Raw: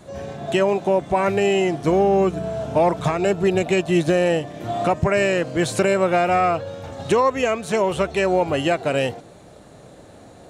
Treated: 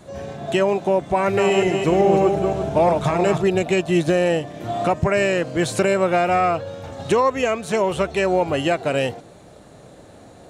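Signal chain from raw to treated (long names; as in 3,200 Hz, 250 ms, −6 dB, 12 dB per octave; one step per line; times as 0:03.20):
0:01.16–0:03.42: feedback delay that plays each chunk backwards 171 ms, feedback 49%, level −4.5 dB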